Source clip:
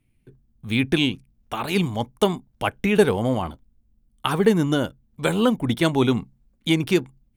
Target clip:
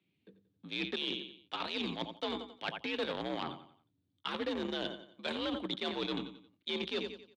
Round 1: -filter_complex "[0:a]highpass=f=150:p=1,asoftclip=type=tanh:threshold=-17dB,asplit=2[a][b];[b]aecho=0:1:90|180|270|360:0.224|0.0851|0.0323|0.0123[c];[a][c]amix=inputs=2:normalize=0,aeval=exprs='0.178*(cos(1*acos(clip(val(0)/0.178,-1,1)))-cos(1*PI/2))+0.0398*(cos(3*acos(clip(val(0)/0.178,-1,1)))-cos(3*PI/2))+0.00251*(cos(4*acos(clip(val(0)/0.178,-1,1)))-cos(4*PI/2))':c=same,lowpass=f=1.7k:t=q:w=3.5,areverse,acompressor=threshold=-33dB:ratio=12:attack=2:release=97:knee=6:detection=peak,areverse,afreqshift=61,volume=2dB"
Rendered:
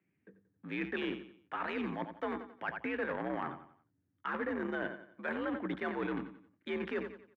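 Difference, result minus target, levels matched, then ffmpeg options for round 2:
4000 Hz band -14.5 dB; soft clip: distortion +9 dB
-filter_complex "[0:a]highpass=f=150:p=1,asoftclip=type=tanh:threshold=-9dB,asplit=2[a][b];[b]aecho=0:1:90|180|270|360:0.224|0.0851|0.0323|0.0123[c];[a][c]amix=inputs=2:normalize=0,aeval=exprs='0.178*(cos(1*acos(clip(val(0)/0.178,-1,1)))-cos(1*PI/2))+0.0398*(cos(3*acos(clip(val(0)/0.178,-1,1)))-cos(3*PI/2))+0.00251*(cos(4*acos(clip(val(0)/0.178,-1,1)))-cos(4*PI/2))':c=same,lowpass=f=3.7k:t=q:w=3.5,areverse,acompressor=threshold=-33dB:ratio=12:attack=2:release=97:knee=6:detection=peak,areverse,afreqshift=61,volume=2dB"

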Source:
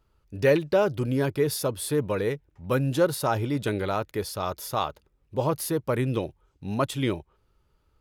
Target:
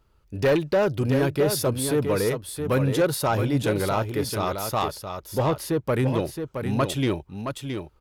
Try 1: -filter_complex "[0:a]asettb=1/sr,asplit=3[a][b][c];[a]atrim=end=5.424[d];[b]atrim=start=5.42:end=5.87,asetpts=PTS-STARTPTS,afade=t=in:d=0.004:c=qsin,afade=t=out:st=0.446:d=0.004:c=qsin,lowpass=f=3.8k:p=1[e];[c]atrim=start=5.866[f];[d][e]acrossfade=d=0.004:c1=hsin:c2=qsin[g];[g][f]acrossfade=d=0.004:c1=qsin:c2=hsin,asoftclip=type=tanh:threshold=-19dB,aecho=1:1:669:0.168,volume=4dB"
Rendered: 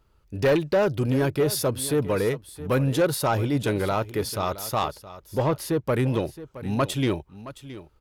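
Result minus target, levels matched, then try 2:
echo-to-direct -8.5 dB
-filter_complex "[0:a]asettb=1/sr,asplit=3[a][b][c];[a]atrim=end=5.424[d];[b]atrim=start=5.42:end=5.87,asetpts=PTS-STARTPTS,afade=t=in:d=0.004:c=qsin,afade=t=out:st=0.446:d=0.004:c=qsin,lowpass=f=3.8k:p=1[e];[c]atrim=start=5.866[f];[d][e]acrossfade=d=0.004:c1=hsin:c2=qsin[g];[g][f]acrossfade=d=0.004:c1=qsin:c2=hsin,asoftclip=type=tanh:threshold=-19dB,aecho=1:1:669:0.447,volume=4dB"

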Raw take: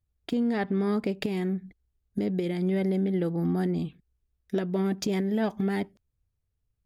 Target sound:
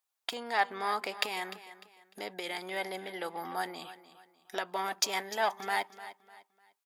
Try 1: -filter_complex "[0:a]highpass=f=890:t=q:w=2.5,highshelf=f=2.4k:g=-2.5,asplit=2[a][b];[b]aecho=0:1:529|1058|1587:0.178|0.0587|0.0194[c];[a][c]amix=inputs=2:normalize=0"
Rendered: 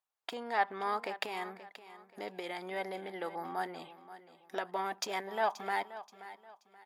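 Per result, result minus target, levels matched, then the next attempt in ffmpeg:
echo 0.229 s late; 4000 Hz band -5.0 dB
-filter_complex "[0:a]highpass=f=890:t=q:w=2.5,highshelf=f=2.4k:g=-2.5,asplit=2[a][b];[b]aecho=0:1:300|600|900:0.178|0.0587|0.0194[c];[a][c]amix=inputs=2:normalize=0"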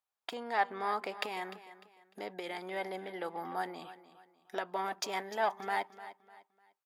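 4000 Hz band -5.0 dB
-filter_complex "[0:a]highpass=f=890:t=q:w=2.5,highshelf=f=2.4k:g=8.5,asplit=2[a][b];[b]aecho=0:1:300|600|900:0.178|0.0587|0.0194[c];[a][c]amix=inputs=2:normalize=0"

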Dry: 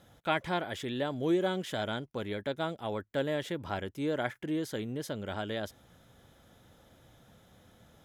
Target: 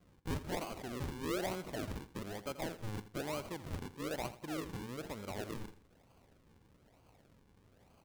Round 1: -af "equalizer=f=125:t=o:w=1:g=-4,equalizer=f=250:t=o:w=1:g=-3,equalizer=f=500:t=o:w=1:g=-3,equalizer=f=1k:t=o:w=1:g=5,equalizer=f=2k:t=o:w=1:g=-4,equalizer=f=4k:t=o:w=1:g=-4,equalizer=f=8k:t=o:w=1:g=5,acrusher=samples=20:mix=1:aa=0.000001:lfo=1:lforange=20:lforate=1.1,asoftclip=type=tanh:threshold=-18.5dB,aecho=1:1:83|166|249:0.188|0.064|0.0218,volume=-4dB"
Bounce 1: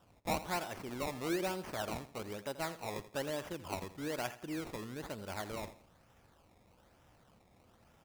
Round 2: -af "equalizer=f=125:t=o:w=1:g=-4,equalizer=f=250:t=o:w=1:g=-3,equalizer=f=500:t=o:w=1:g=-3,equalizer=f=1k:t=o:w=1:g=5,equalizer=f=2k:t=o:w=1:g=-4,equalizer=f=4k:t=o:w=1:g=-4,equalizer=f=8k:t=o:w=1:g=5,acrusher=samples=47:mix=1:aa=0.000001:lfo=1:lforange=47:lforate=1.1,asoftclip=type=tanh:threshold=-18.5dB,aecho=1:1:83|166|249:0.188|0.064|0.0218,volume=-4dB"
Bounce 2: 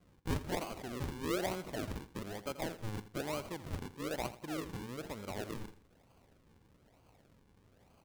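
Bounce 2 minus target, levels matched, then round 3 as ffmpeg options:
soft clip: distortion -11 dB
-af "equalizer=f=125:t=o:w=1:g=-4,equalizer=f=250:t=o:w=1:g=-3,equalizer=f=500:t=o:w=1:g=-3,equalizer=f=1k:t=o:w=1:g=5,equalizer=f=2k:t=o:w=1:g=-4,equalizer=f=4k:t=o:w=1:g=-4,equalizer=f=8k:t=o:w=1:g=5,acrusher=samples=47:mix=1:aa=0.000001:lfo=1:lforange=47:lforate=1.1,asoftclip=type=tanh:threshold=-26.5dB,aecho=1:1:83|166|249:0.188|0.064|0.0218,volume=-4dB"

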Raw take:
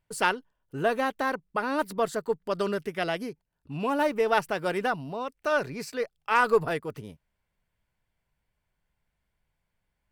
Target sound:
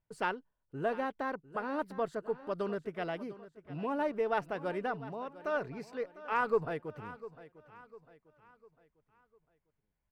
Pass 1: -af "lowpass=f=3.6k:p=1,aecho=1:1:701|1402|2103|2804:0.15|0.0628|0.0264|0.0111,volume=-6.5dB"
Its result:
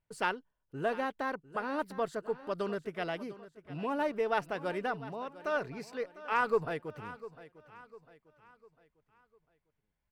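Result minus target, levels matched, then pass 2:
4000 Hz band +4.0 dB
-af "lowpass=f=1.5k:p=1,aecho=1:1:701|1402|2103|2804:0.15|0.0628|0.0264|0.0111,volume=-6.5dB"

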